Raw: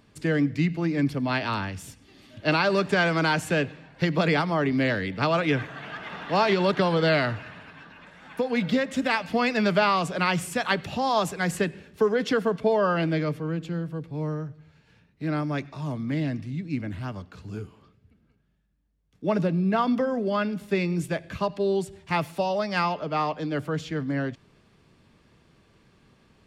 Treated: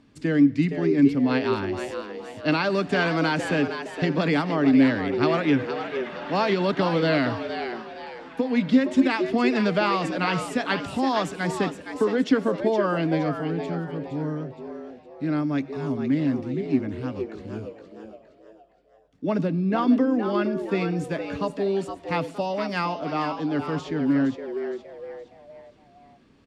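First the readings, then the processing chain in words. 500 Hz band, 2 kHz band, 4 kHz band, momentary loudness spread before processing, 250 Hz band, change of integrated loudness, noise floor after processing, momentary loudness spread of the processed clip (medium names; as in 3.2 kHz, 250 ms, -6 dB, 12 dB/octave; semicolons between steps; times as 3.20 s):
+1.0 dB, -1.0 dB, -1.5 dB, 12 LU, +5.0 dB, +1.5 dB, -55 dBFS, 13 LU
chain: low-pass 8.1 kHz 12 dB/octave; peaking EQ 270 Hz +11.5 dB 0.41 oct; frequency-shifting echo 466 ms, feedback 39%, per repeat +110 Hz, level -8.5 dB; trim -2 dB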